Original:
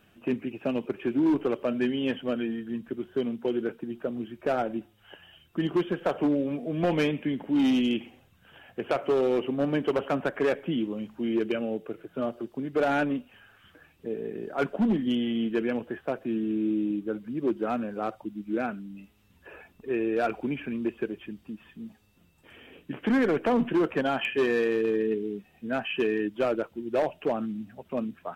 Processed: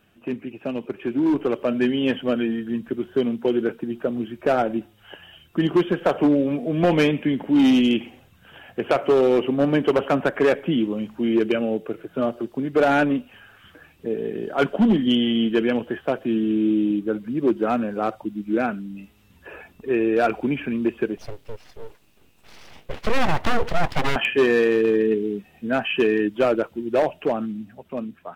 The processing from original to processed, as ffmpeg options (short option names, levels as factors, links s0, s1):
-filter_complex "[0:a]asettb=1/sr,asplit=3[s0][s1][s2];[s0]atrim=end=14.184[s3];[s1]atrim=start=14.18:end=16.99,asetpts=PTS-STARTPTS,afade=t=in:d=0.004:c=qsin,afade=t=out:st=2.806:d=0.004:c=qsin,equalizer=f=3100:t=o:w=0.22:g=7[s4];[s2]atrim=start=16.986[s5];[s3][s4]acrossfade=d=0.004:c1=hsin:c2=qsin[s6];[s6][s5]acrossfade=d=0.004:c1=qsin:c2=hsin,asettb=1/sr,asplit=3[s7][s8][s9];[s7]atrim=end=21.174[s10];[s8]atrim=start=21.17:end=24.16,asetpts=PTS-STARTPTS,afade=t=in:d=0.004:c=qsin,afade=t=out:st=2.986:d=0.004:c=qsin,aeval=exprs='abs(val(0))':c=same[s11];[s9]atrim=start=24.156[s12];[s10][s11]acrossfade=d=0.004:c1=hsin:c2=qsin[s13];[s13][s12]acrossfade=d=0.004:c1=qsin:c2=hsin,dynaudnorm=f=260:g=11:m=2.24"